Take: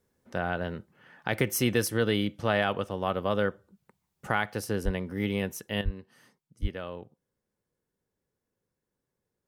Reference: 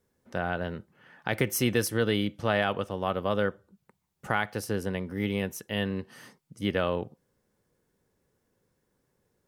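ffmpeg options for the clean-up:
-filter_complex "[0:a]asplit=3[s0][s1][s2];[s0]afade=t=out:st=4.84:d=0.02[s3];[s1]highpass=f=140:w=0.5412,highpass=f=140:w=1.3066,afade=t=in:st=4.84:d=0.02,afade=t=out:st=4.96:d=0.02[s4];[s2]afade=t=in:st=4.96:d=0.02[s5];[s3][s4][s5]amix=inputs=3:normalize=0,asplit=3[s6][s7][s8];[s6]afade=t=out:st=5.84:d=0.02[s9];[s7]highpass=f=140:w=0.5412,highpass=f=140:w=1.3066,afade=t=in:st=5.84:d=0.02,afade=t=out:st=5.96:d=0.02[s10];[s8]afade=t=in:st=5.96:d=0.02[s11];[s9][s10][s11]amix=inputs=3:normalize=0,asplit=3[s12][s13][s14];[s12]afade=t=out:st=6.61:d=0.02[s15];[s13]highpass=f=140:w=0.5412,highpass=f=140:w=1.3066,afade=t=in:st=6.61:d=0.02,afade=t=out:st=6.73:d=0.02[s16];[s14]afade=t=in:st=6.73:d=0.02[s17];[s15][s16][s17]amix=inputs=3:normalize=0,asetnsamples=n=441:p=0,asendcmd='5.81 volume volume 10.5dB',volume=1"

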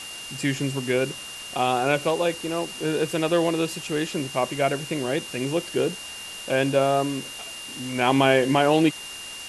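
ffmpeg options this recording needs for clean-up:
-af "bandreject=f=2800:w=30,afftdn=nr=30:nf=-37"

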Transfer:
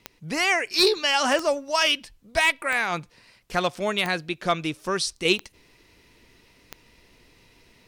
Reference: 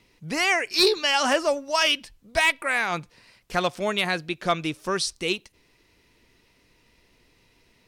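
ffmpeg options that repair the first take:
-af "adeclick=t=4,asetnsamples=n=441:p=0,asendcmd='5.25 volume volume -5dB',volume=1"

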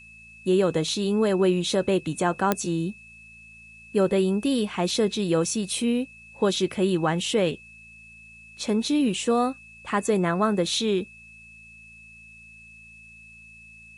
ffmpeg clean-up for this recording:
-af "adeclick=t=4,bandreject=f=55.8:t=h:w=4,bandreject=f=111.6:t=h:w=4,bandreject=f=167.4:t=h:w=4,bandreject=f=223.2:t=h:w=4,bandreject=f=2600:w=30,agate=range=0.0891:threshold=0.01"

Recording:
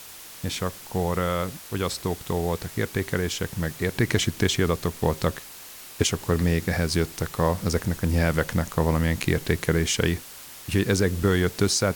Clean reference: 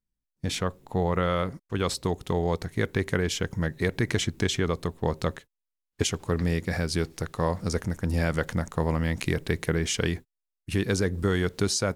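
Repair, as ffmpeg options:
-af "afwtdn=0.0079,asetnsamples=n=441:p=0,asendcmd='3.94 volume volume -3.5dB',volume=1"

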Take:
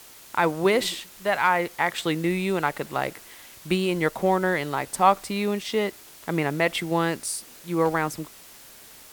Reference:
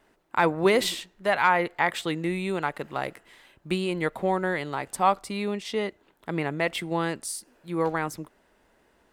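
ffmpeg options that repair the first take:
-af "afwtdn=0.0045,asetnsamples=n=441:p=0,asendcmd='1.98 volume volume -3.5dB',volume=1"

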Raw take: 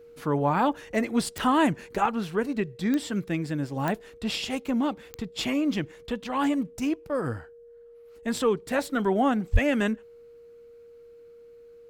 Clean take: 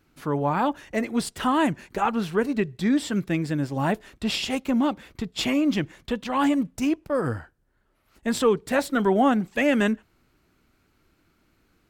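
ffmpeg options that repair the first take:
-filter_complex "[0:a]adeclick=t=4,bandreject=f=470:w=30,asplit=3[s0][s1][s2];[s0]afade=t=out:st=9.52:d=0.02[s3];[s1]highpass=f=140:w=0.5412,highpass=f=140:w=1.3066,afade=t=in:st=9.52:d=0.02,afade=t=out:st=9.64:d=0.02[s4];[s2]afade=t=in:st=9.64:d=0.02[s5];[s3][s4][s5]amix=inputs=3:normalize=0,asetnsamples=n=441:p=0,asendcmd='2.06 volume volume 3.5dB',volume=1"

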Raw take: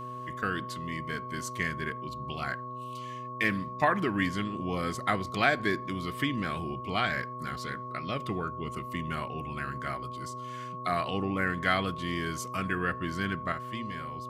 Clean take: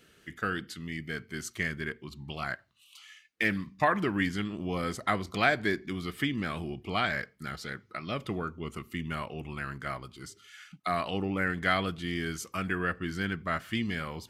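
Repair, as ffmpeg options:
-af "bandreject=f=124.8:t=h:w=4,bandreject=f=249.6:t=h:w=4,bandreject=f=374.4:t=h:w=4,bandreject=f=499.2:t=h:w=4,bandreject=f=624:t=h:w=4,bandreject=f=1100:w=30,asetnsamples=n=441:p=0,asendcmd='13.52 volume volume 7.5dB',volume=1"

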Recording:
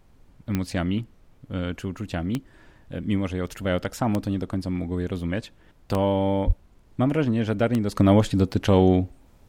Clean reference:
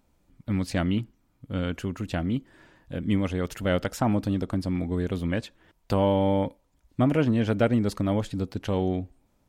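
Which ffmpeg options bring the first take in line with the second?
-filter_complex "[0:a]adeclick=t=4,asplit=3[s0][s1][s2];[s0]afade=t=out:st=6.46:d=0.02[s3];[s1]highpass=f=140:w=0.5412,highpass=f=140:w=1.3066,afade=t=in:st=6.46:d=0.02,afade=t=out:st=6.58:d=0.02[s4];[s2]afade=t=in:st=6.58:d=0.02[s5];[s3][s4][s5]amix=inputs=3:normalize=0,agate=range=0.0891:threshold=0.00501,asetnsamples=n=441:p=0,asendcmd='7.96 volume volume -8.5dB',volume=1"

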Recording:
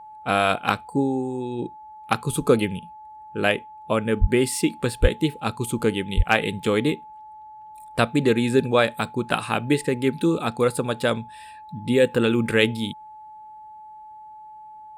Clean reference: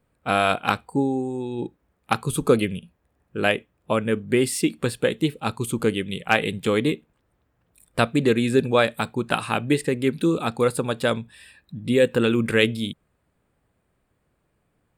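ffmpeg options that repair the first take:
-filter_complex "[0:a]bandreject=f=860:w=30,asplit=3[s0][s1][s2];[s0]afade=t=out:st=4.2:d=0.02[s3];[s1]highpass=f=140:w=0.5412,highpass=f=140:w=1.3066,afade=t=in:st=4.2:d=0.02,afade=t=out:st=4.32:d=0.02[s4];[s2]afade=t=in:st=4.32:d=0.02[s5];[s3][s4][s5]amix=inputs=3:normalize=0,asplit=3[s6][s7][s8];[s6]afade=t=out:st=5.01:d=0.02[s9];[s7]highpass=f=140:w=0.5412,highpass=f=140:w=1.3066,afade=t=in:st=5.01:d=0.02,afade=t=out:st=5.13:d=0.02[s10];[s8]afade=t=in:st=5.13:d=0.02[s11];[s9][s10][s11]amix=inputs=3:normalize=0,asplit=3[s12][s13][s14];[s12]afade=t=out:st=6.16:d=0.02[s15];[s13]highpass=f=140:w=0.5412,highpass=f=140:w=1.3066,afade=t=in:st=6.16:d=0.02,afade=t=out:st=6.28:d=0.02[s16];[s14]afade=t=in:st=6.28:d=0.02[s17];[s15][s16][s17]amix=inputs=3:normalize=0"

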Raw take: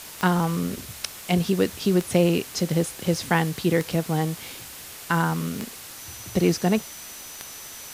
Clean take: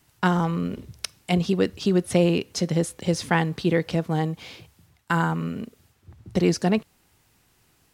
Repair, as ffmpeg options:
-af "adeclick=t=4,bandreject=f=6000:w=30,afwtdn=0.011"

